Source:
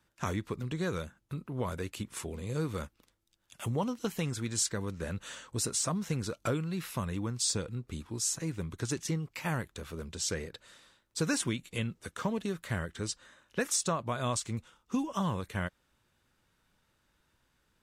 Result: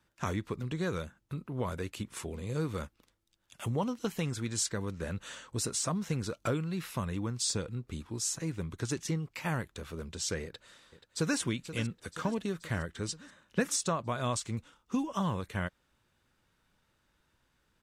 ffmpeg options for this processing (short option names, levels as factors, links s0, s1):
-filter_complex "[0:a]asplit=2[s0][s1];[s1]afade=t=in:st=10.44:d=0.01,afade=t=out:st=11.38:d=0.01,aecho=0:1:480|960|1440|1920|2400|2880|3360:0.237137|0.142282|0.0853695|0.0512217|0.030733|0.0184398|0.0110639[s2];[s0][s2]amix=inputs=2:normalize=0,asettb=1/sr,asplit=3[s3][s4][s5];[s3]atrim=end=13.084[s6];[s4]atrim=start=13.08:end=13.76,asetpts=PTS-STARTPTS,afade=t=in:d=0.004:c=qsin,afade=t=out:st=0.676:d=0.004:c=qsin,equalizer=f=180:w=1.5:g=7.5[s7];[s5]atrim=start=13.756[s8];[s6][s7]acrossfade=d=0.004:c1=hsin:c2=qsin[s9];[s9][s8]acrossfade=d=0.004:c1=qsin:c2=hsin,highshelf=f=7800:g=-4"